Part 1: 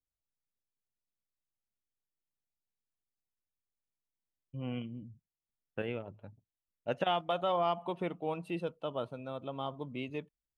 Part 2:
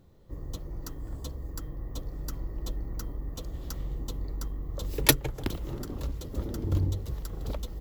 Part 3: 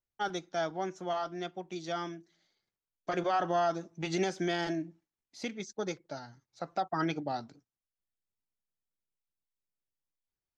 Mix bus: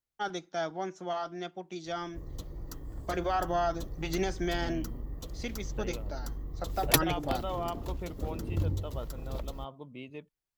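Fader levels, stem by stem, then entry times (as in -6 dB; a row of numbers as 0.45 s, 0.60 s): -5.0 dB, -3.5 dB, -0.5 dB; 0.00 s, 1.85 s, 0.00 s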